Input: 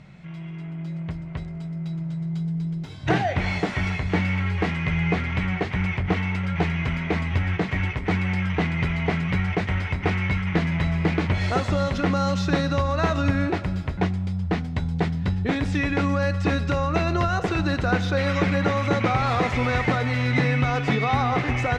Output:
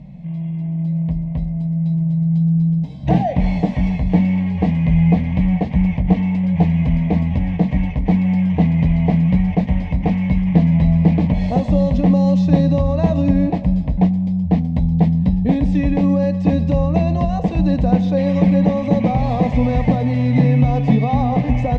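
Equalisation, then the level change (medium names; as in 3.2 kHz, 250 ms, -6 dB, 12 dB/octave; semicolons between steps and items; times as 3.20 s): high-pass 44 Hz; tilt EQ -4 dB/octave; static phaser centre 370 Hz, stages 6; +3.0 dB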